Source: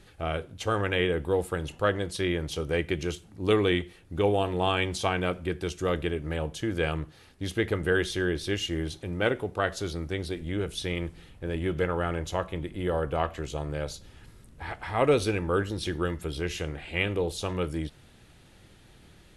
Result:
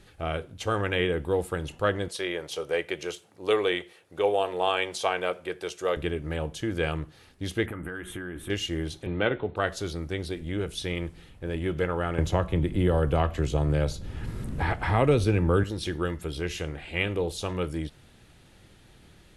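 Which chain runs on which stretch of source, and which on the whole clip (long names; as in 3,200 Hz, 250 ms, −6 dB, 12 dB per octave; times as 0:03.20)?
0:02.08–0:05.97: high-pass filter 130 Hz + low shelf with overshoot 350 Hz −9.5 dB, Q 1.5
0:07.66–0:08.50: drawn EQ curve 160 Hz 0 dB, 280 Hz +6 dB, 410 Hz −5 dB, 1,300 Hz +6 dB, 3,300 Hz −6 dB, 4,700 Hz −28 dB, 8,100 Hz −2 dB, 13,000 Hz +6 dB + downward compressor 10 to 1, threshold −32 dBFS + double-tracking delay 17 ms −14 dB
0:09.06–0:09.56: linear-phase brick-wall low-pass 4,300 Hz + double-tracking delay 14 ms −12.5 dB + multiband upward and downward compressor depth 40%
0:12.18–0:15.64: low-shelf EQ 270 Hz +10 dB + multiband upward and downward compressor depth 70%
whole clip: no processing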